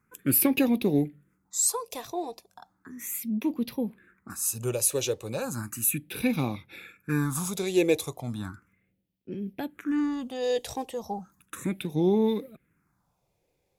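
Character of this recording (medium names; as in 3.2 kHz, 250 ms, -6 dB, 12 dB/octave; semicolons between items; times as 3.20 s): phasing stages 4, 0.35 Hz, lowest notch 220–1400 Hz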